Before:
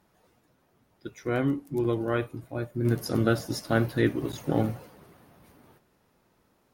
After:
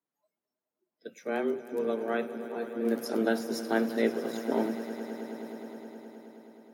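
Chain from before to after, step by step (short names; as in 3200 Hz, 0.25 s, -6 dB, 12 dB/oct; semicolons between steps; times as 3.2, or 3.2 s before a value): frequency shift +110 Hz; spectral noise reduction 23 dB; swelling echo 0.105 s, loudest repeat 5, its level -17.5 dB; gain -4 dB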